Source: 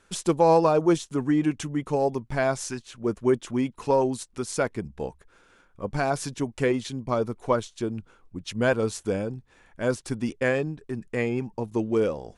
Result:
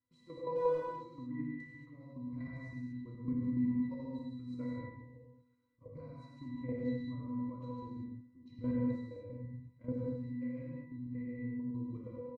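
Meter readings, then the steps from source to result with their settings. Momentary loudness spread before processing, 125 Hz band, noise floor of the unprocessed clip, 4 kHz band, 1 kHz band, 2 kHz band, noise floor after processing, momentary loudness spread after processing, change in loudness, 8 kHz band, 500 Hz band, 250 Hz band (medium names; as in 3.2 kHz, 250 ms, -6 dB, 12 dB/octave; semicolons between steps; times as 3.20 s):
12 LU, -10.5 dB, -60 dBFS, under -25 dB, -19.5 dB, -22.0 dB, -67 dBFS, 17 LU, -13.5 dB, under -40 dB, -17.5 dB, -10.0 dB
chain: peaking EQ 650 Hz -8.5 dB 1.3 oct; pitch-class resonator B, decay 0.57 s; speakerphone echo 90 ms, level -9 dB; level held to a coarse grid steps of 12 dB; gated-style reverb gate 260 ms flat, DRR -3.5 dB; trim +4 dB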